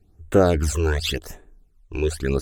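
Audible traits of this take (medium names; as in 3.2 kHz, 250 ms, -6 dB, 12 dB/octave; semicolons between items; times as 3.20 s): phasing stages 12, 0.88 Hz, lowest notch 200–5000 Hz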